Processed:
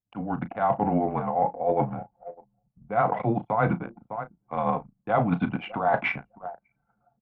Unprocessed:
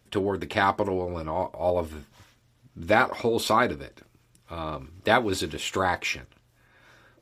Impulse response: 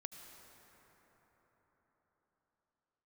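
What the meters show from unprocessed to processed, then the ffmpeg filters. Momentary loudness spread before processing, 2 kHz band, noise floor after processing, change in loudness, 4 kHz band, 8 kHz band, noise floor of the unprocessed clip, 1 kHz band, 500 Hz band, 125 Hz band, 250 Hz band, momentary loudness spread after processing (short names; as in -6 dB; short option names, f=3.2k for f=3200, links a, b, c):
15 LU, -5.5 dB, -76 dBFS, -1.0 dB, under -10 dB, under -35 dB, -64 dBFS, +1.0 dB, -1.5 dB, +5.0 dB, +2.5 dB, 13 LU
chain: -filter_complex "[0:a]afreqshift=-110,highpass=110,equalizer=f=130:t=q:w=4:g=10,equalizer=f=190:t=q:w=4:g=8,equalizer=f=380:t=q:w=4:g=-9,equalizer=f=730:t=q:w=4:g=10,equalizer=f=1.8k:t=q:w=4:g=-8,lowpass=f=2.1k:w=0.5412,lowpass=f=2.1k:w=1.3066,tremolo=f=9.4:d=0.4,lowshelf=f=310:g=-7,aecho=1:1:603|1206:0.0794|0.0127,areverse,acompressor=threshold=-30dB:ratio=20,areverse,anlmdn=0.1,dynaudnorm=f=240:g=3:m=10.5dB,asplit=2[a][b];[b]adelay=35,volume=-13dB[c];[a][c]amix=inputs=2:normalize=0"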